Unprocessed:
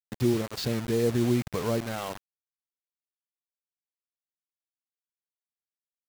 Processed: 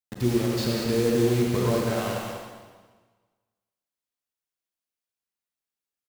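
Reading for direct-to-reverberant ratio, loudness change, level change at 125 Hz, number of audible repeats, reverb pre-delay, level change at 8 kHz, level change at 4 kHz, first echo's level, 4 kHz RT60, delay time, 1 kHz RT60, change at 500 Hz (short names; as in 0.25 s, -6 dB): -2.5 dB, +3.5 dB, +3.5 dB, 1, 34 ms, +4.5 dB, +4.0 dB, -6.5 dB, 1.3 s, 0.193 s, 1.4 s, +4.0 dB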